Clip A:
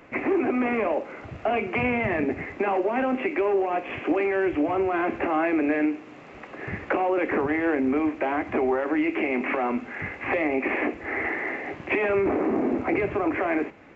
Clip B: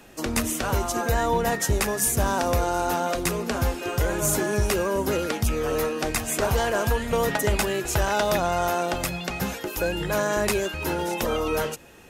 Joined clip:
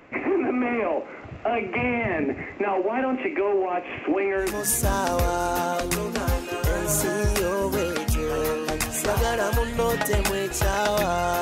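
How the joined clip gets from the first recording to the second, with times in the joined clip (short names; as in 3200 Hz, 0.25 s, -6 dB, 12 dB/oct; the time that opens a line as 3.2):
clip A
4.5 switch to clip B from 1.84 s, crossfade 0.28 s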